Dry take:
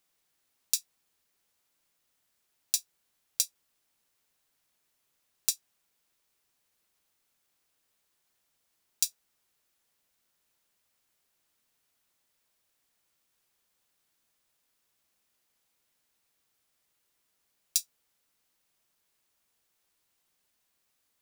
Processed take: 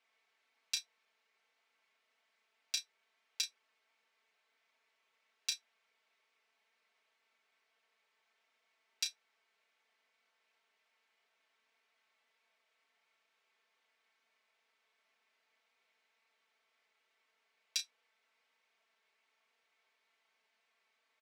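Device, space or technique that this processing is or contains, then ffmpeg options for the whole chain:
megaphone: -filter_complex "[0:a]highpass=480,lowpass=3.1k,equalizer=f=2.2k:t=o:w=0.27:g=6.5,aecho=1:1:4.5:1,asoftclip=type=hard:threshold=-23dB,asplit=2[a][b];[b]adelay=32,volume=-8.5dB[c];[a][c]amix=inputs=2:normalize=0,volume=1dB"

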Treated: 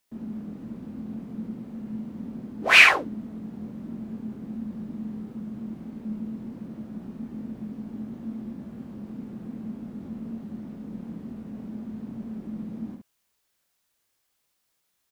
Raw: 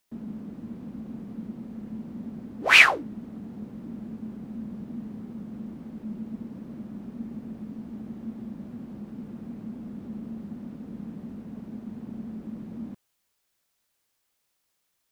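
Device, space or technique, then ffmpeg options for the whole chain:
slapback doubling: -filter_complex "[0:a]asplit=3[a][b][c];[b]adelay=23,volume=-5dB[d];[c]adelay=70,volume=-5dB[e];[a][d][e]amix=inputs=3:normalize=0,volume=-1dB"

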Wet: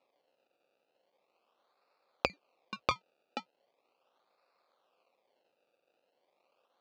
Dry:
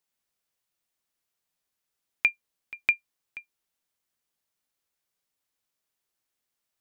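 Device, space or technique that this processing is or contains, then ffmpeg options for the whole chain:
circuit-bent sampling toy: -af "acrusher=samples=28:mix=1:aa=0.000001:lfo=1:lforange=28:lforate=0.39,highpass=450,equalizer=f=530:t=q:w=4:g=9,equalizer=f=760:t=q:w=4:g=4,equalizer=f=1.2k:t=q:w=4:g=6,equalizer=f=1.8k:t=q:w=4:g=-8,equalizer=f=2.6k:t=q:w=4:g=10,equalizer=f=4.3k:t=q:w=4:g=6,lowpass=f=5.4k:w=0.5412,lowpass=f=5.4k:w=1.3066,volume=6dB"

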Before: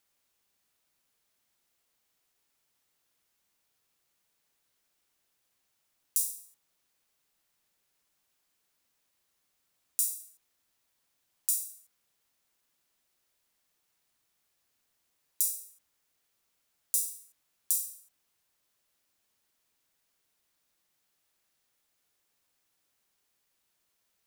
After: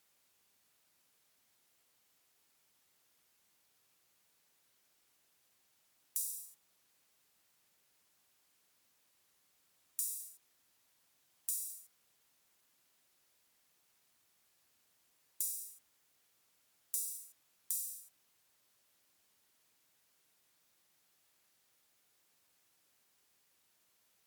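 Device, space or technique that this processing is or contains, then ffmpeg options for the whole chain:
podcast mastering chain: -af "highpass=71,acompressor=threshold=-35dB:ratio=2,alimiter=limit=-14.5dB:level=0:latency=1:release=217,volume=3.5dB" -ar 44100 -c:a libmp3lame -b:a 96k

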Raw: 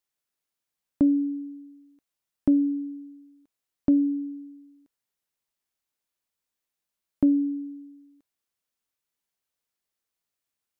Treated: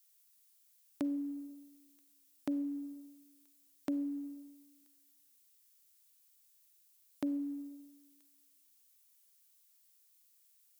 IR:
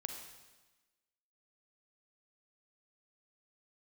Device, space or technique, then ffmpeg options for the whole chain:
compressed reverb return: -filter_complex "[0:a]aderivative,asplit=2[a][b];[1:a]atrim=start_sample=2205[c];[b][c]afir=irnorm=-1:irlink=0,acompressor=threshold=-51dB:ratio=6,volume=3.5dB[d];[a][d]amix=inputs=2:normalize=0,volume=8dB"

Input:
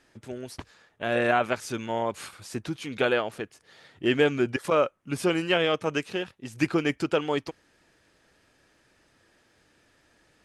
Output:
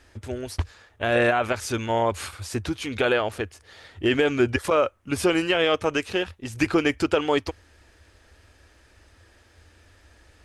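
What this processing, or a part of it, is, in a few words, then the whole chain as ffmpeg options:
car stereo with a boomy subwoofer: -af "lowshelf=f=110:t=q:w=3:g=9.5,alimiter=limit=-16.5dB:level=0:latency=1:release=50,volume=6dB"

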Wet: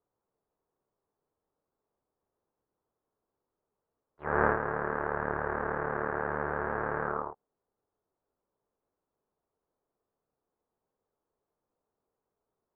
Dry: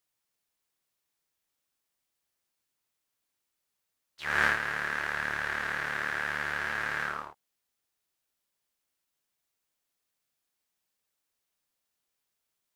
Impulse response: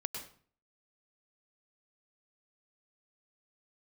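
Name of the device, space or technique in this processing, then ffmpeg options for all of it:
under water: -af "lowpass=f=1.1k:w=0.5412,lowpass=f=1.1k:w=1.3066,equalizer=f=430:t=o:w=0.52:g=7.5,volume=7dB"

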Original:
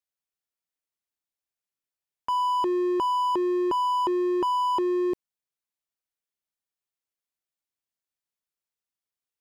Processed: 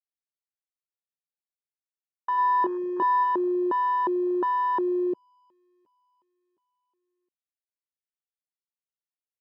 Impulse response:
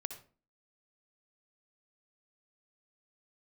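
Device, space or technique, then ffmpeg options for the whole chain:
over-cleaned archive recording: -filter_complex "[0:a]asplit=3[a][b][c];[a]afade=t=out:st=2.37:d=0.02[d];[b]asplit=2[e][f];[f]adelay=24,volume=-4dB[g];[e][g]amix=inputs=2:normalize=0,afade=t=in:st=2.37:d=0.02,afade=t=out:st=3.23:d=0.02[h];[c]afade=t=in:st=3.23:d=0.02[i];[d][h][i]amix=inputs=3:normalize=0,highpass=160,lowpass=5.4k,aecho=1:1:717|1434|2151:0.0708|0.0283|0.0113,afwtdn=0.0316"

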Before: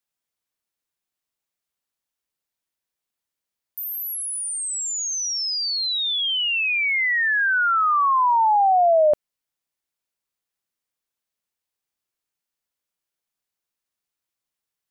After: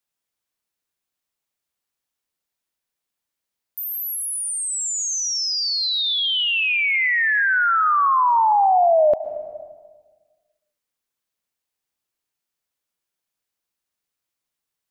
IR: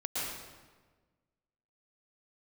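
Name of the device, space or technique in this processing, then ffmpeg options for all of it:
compressed reverb return: -filter_complex "[0:a]asettb=1/sr,asplit=3[a][b][c];[a]atrim=end=7.334[d];[b]atrim=start=7.33:end=7.86,asetpts=PTS-STARTPTS,afade=t=in:d=0.004:c=qsin,afade=t=out:st=0.526:d=0.004:c=qsin,asubboost=boost=11.5:cutoff=130[e];[c]atrim=start=7.856[f];[d][e]acrossfade=d=0.004:c1=hsin:c2=qsin[g];[g][f]acrossfade=d=0.004:c1=qsin:c2=hsin,asplit=2[h][i];[1:a]atrim=start_sample=2205[j];[i][j]afir=irnorm=-1:irlink=0,acompressor=threshold=-14dB:ratio=6,volume=-11.5dB[k];[h][k]amix=inputs=2:normalize=0"

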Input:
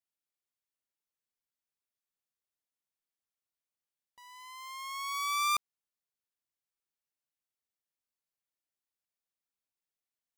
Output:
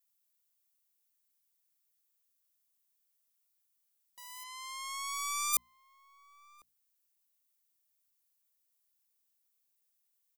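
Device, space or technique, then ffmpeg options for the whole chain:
one-band saturation: -filter_complex "[0:a]asplit=3[a][b][c];[a]afade=t=out:st=4.43:d=0.02[d];[b]lowpass=6.9k,afade=t=in:st=4.43:d=0.02,afade=t=out:st=5.52:d=0.02[e];[c]afade=t=in:st=5.52:d=0.02[f];[d][e][f]amix=inputs=3:normalize=0,acrossover=split=470|4400[g][h][i];[h]asoftclip=type=tanh:threshold=-37dB[j];[g][j][i]amix=inputs=3:normalize=0,aemphasis=mode=production:type=75kf,bandreject=f=60:t=h:w=6,bandreject=f=120:t=h:w=6,bandreject=f=180:t=h:w=6,bandreject=f=240:t=h:w=6,asplit=2[k][l];[l]adelay=1050,volume=-20dB,highshelf=f=4k:g=-23.6[m];[k][m]amix=inputs=2:normalize=0,volume=-1dB"

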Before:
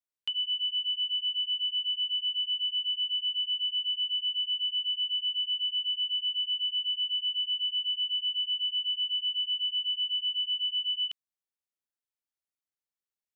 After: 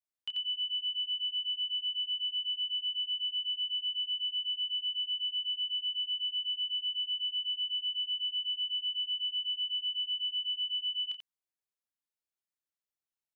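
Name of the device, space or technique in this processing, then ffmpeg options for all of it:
slapback doubling: -filter_complex "[0:a]asplit=3[a][b][c];[b]adelay=28,volume=-9dB[d];[c]adelay=88,volume=-5dB[e];[a][d][e]amix=inputs=3:normalize=0,volume=-5.5dB"

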